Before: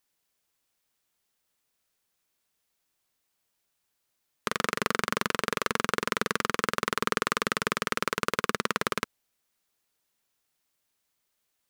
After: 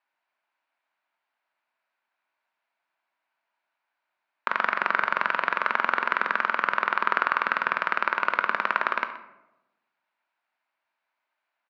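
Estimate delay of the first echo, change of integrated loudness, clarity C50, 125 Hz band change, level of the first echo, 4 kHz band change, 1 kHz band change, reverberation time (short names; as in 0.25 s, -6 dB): 0.125 s, +4.0 dB, 10.5 dB, under -10 dB, -17.0 dB, -6.0 dB, +6.0 dB, 0.95 s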